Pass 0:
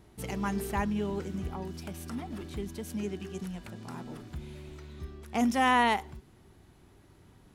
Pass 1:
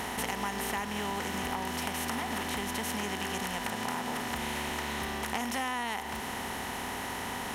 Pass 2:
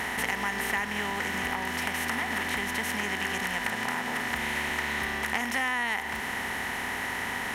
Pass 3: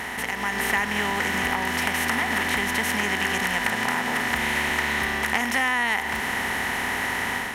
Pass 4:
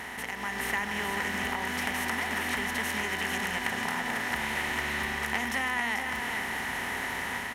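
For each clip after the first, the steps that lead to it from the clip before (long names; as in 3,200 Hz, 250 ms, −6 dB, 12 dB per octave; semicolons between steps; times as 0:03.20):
compressor on every frequency bin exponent 0.4; spectral tilt +2 dB per octave; downward compressor 6 to 1, threshold −30 dBFS, peak gain reduction 12.5 dB
parametric band 1,900 Hz +10 dB 0.79 octaves
automatic gain control gain up to 6 dB
single-tap delay 437 ms −6 dB; level −7.5 dB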